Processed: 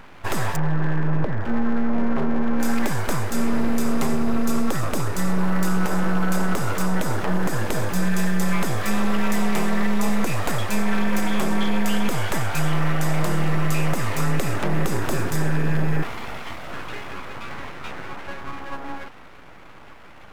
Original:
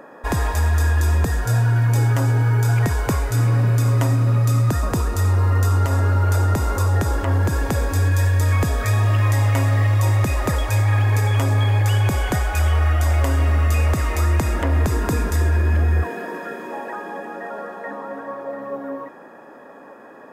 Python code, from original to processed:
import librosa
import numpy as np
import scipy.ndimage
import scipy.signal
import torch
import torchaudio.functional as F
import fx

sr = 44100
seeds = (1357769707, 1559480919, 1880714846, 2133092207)

y = fx.gaussian_blur(x, sr, sigma=4.4, at=(0.56, 2.6))
y = np.abs(y)